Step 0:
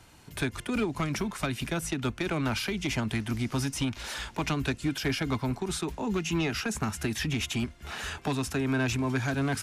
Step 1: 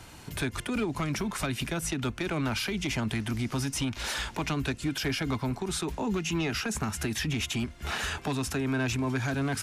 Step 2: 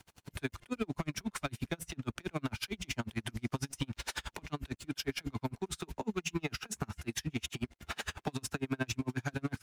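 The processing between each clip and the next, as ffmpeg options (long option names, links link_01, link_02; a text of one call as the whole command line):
ffmpeg -i in.wav -af "alimiter=level_in=5.5dB:limit=-24dB:level=0:latency=1:release=226,volume=-5.5dB,volume=7dB" out.wav
ffmpeg -i in.wav -af "aeval=exprs='sgn(val(0))*max(abs(val(0))-0.00335,0)':channel_layout=same,aeval=exprs='val(0)*pow(10,-37*(0.5-0.5*cos(2*PI*11*n/s))/20)':channel_layout=same" out.wav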